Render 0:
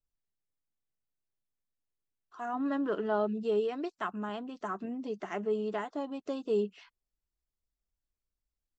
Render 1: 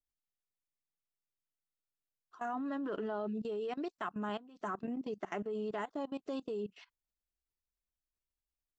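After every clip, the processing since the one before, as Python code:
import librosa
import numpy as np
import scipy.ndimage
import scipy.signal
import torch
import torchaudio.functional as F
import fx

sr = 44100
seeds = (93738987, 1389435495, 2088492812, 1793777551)

y = fx.level_steps(x, sr, step_db=19)
y = y * 10.0 ** (1.0 / 20.0)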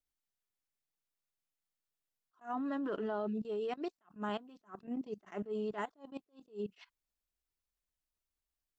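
y = fx.attack_slew(x, sr, db_per_s=260.0)
y = y * 10.0 ** (1.0 / 20.0)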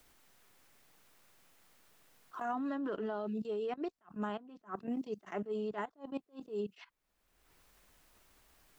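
y = fx.band_squash(x, sr, depth_pct=100)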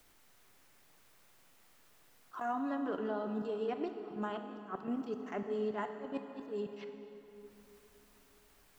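y = fx.rev_plate(x, sr, seeds[0], rt60_s=3.6, hf_ratio=0.8, predelay_ms=0, drr_db=6.0)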